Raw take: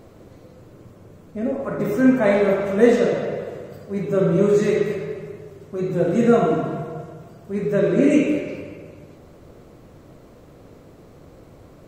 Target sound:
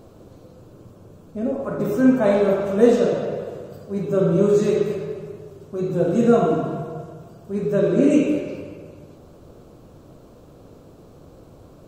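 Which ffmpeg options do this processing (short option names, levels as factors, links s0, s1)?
-af "equalizer=f=2000:t=o:w=0.45:g=-11.5"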